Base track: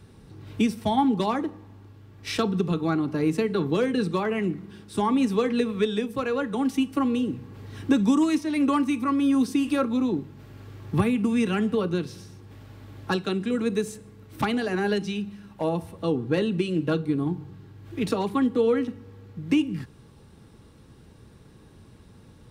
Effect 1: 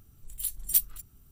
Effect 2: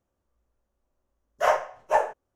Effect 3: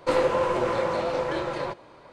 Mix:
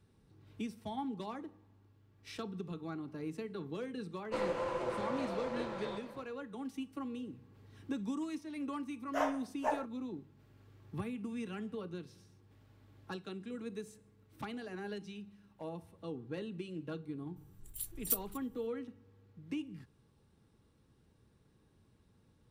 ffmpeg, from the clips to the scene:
-filter_complex "[0:a]volume=-17.5dB[a];[3:a]aecho=1:1:128.3|244.9:0.251|0.282,atrim=end=2.12,asetpts=PTS-STARTPTS,volume=-13dB,afade=t=in:d=0.1,afade=t=out:st=2.02:d=0.1,adelay=187425S[b];[2:a]atrim=end=2.35,asetpts=PTS-STARTPTS,volume=-12dB,afade=t=in:d=0.004:c=hsin,afade=t=out:st=2.346:d=0.004:c=hsin,adelay=7730[c];[1:a]atrim=end=1.31,asetpts=PTS-STARTPTS,volume=-9.5dB,afade=t=in:d=0.004:c=hsin,afade=t=out:st=1.306:d=0.004:c=hsin,adelay=17360[d];[a][b][c][d]amix=inputs=4:normalize=0"

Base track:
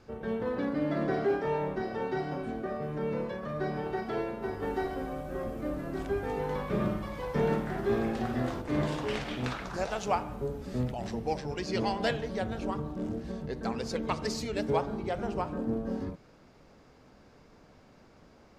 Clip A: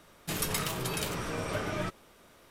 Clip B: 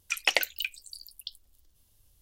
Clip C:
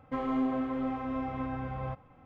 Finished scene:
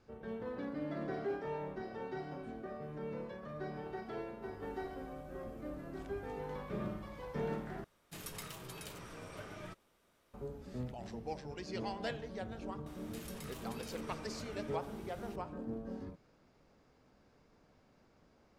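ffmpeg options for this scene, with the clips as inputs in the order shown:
-filter_complex "[1:a]asplit=2[a][b];[0:a]volume=-10dB[c];[b]acompressor=threshold=-48dB:ratio=6:attack=3.2:release=140:knee=1:detection=peak[d];[c]asplit=2[e][f];[e]atrim=end=7.844[g];[a]atrim=end=2.5,asetpts=PTS-STARTPTS,volume=-14.5dB[h];[f]atrim=start=10.336[i];[d]atrim=end=2.5,asetpts=PTS-STARTPTS,afade=t=in:d=0.004:c=hsin,afade=t=out:st=2.496:d=0.004:c=hsin,adelay=12860[j];[g][h]acrossfade=d=0.004:c1=hsin:c2=hsin[k];[k][i]acrossfade=d=0.004:c1=hsin:c2=hsin[l];[l][j]amix=inputs=2:normalize=0"

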